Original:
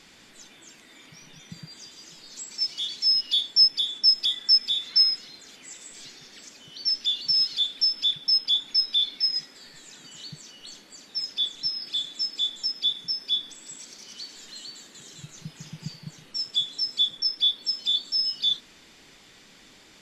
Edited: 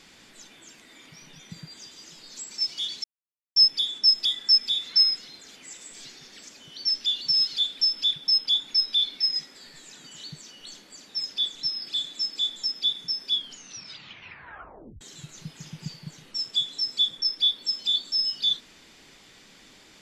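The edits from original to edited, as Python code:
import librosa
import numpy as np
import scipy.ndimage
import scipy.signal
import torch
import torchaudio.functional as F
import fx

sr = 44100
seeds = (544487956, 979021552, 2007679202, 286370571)

y = fx.edit(x, sr, fx.silence(start_s=3.04, length_s=0.52),
    fx.tape_stop(start_s=13.33, length_s=1.68), tone=tone)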